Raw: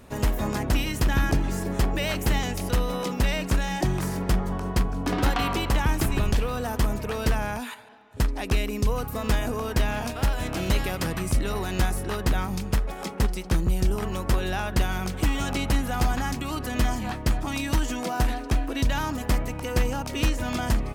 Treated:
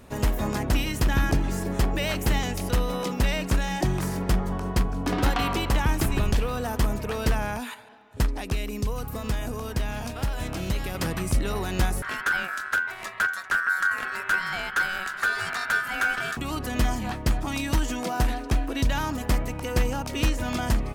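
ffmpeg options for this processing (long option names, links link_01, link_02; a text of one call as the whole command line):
ffmpeg -i in.wav -filter_complex "[0:a]asettb=1/sr,asplit=3[link_01][link_02][link_03];[link_01]atrim=end=8.374[link_04];[link_02]atrim=start=8.37:end=10.95,asetpts=PTS-STARTPTS,afade=type=in:duration=0.004:curve=qsin,afade=type=out:start_time=2.576:duration=0.004:curve=qsin,acrossover=split=180|3600[link_05][link_06][link_07];[link_05]acompressor=threshold=-24dB:ratio=4[link_08];[link_06]acompressor=threshold=-33dB:ratio=4[link_09];[link_07]acompressor=threshold=-40dB:ratio=4[link_10];[link_08][link_09][link_10]amix=inputs=3:normalize=0[link_11];[link_03]atrim=start=10.946[link_12];[link_04][link_11]acrossfade=duration=0.004:curve1=hsin:curve2=qsin[link_13];[link_13][link_12]acrossfade=duration=0.004:curve1=qsin:curve2=hsin,asettb=1/sr,asplit=3[link_14][link_15][link_16];[link_14]atrim=end=12.024[link_17];[link_15]atrim=start=12.02:end=16.37,asetpts=PTS-STARTPTS,afade=type=in:duration=0.004:curve=qsin,afade=type=out:start_time=4.346:duration=0.004:curve=qsin,aeval=exprs='val(0)*sin(2*PI*1500*n/s)':channel_layout=same[link_18];[link_16]atrim=start=16.366[link_19];[link_17][link_18]acrossfade=duration=0.004:curve1=hsin:curve2=qsin[link_20];[link_20][link_19]acrossfade=duration=0.004:curve1=qsin:curve2=hsin" out.wav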